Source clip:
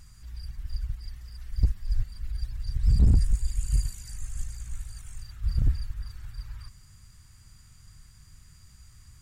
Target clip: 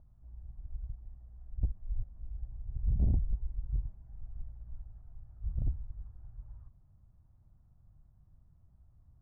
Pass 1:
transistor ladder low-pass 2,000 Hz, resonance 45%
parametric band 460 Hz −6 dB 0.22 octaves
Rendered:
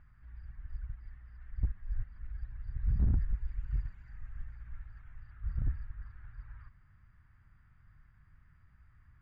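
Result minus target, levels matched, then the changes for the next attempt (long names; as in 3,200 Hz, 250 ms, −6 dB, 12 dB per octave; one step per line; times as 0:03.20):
1,000 Hz band +5.0 dB
change: transistor ladder low-pass 790 Hz, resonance 45%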